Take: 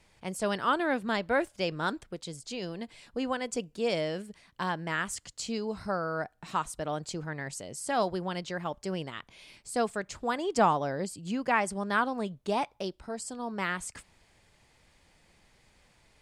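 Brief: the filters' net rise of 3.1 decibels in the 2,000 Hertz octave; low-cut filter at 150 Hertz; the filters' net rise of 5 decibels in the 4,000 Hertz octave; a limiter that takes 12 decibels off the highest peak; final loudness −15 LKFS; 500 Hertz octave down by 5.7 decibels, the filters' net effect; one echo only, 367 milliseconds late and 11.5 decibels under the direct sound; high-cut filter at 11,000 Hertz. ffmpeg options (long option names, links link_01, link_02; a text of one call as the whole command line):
ffmpeg -i in.wav -af "highpass=150,lowpass=11000,equalizer=frequency=500:width_type=o:gain=-7.5,equalizer=frequency=2000:width_type=o:gain=3.5,equalizer=frequency=4000:width_type=o:gain=5.5,alimiter=limit=-23dB:level=0:latency=1,aecho=1:1:367:0.266,volume=20.5dB" out.wav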